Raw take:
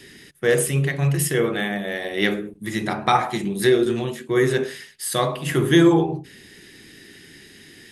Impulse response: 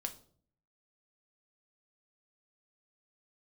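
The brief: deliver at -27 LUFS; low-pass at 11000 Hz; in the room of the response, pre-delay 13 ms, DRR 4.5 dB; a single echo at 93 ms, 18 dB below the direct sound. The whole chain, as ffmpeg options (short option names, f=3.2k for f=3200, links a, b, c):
-filter_complex "[0:a]lowpass=11k,aecho=1:1:93:0.126,asplit=2[a][b];[1:a]atrim=start_sample=2205,adelay=13[c];[b][c]afir=irnorm=-1:irlink=0,volume=-3.5dB[d];[a][d]amix=inputs=2:normalize=0,volume=-7dB"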